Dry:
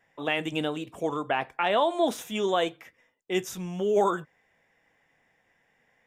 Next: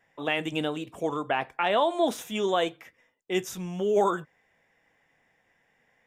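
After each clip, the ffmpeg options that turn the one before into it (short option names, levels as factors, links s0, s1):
-af anull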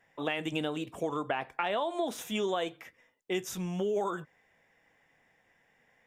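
-af "acompressor=threshold=0.0398:ratio=6"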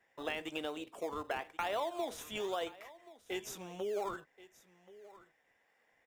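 -filter_complex "[0:a]highpass=390,asplit=2[s0][s1];[s1]acrusher=samples=26:mix=1:aa=0.000001:lfo=1:lforange=26:lforate=1,volume=0.282[s2];[s0][s2]amix=inputs=2:normalize=0,aecho=1:1:1079:0.112,volume=0.531"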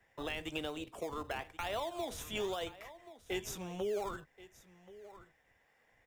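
-filter_complex "[0:a]acrossover=split=120|2500[s0][s1][s2];[s0]aeval=exprs='0.00376*sin(PI/2*3.55*val(0)/0.00376)':c=same[s3];[s1]alimiter=level_in=2.37:limit=0.0631:level=0:latency=1:release=381,volume=0.422[s4];[s3][s4][s2]amix=inputs=3:normalize=0,volume=1.26"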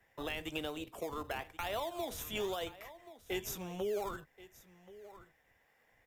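-af "equalizer=f=13000:t=o:w=0.26:g=9.5"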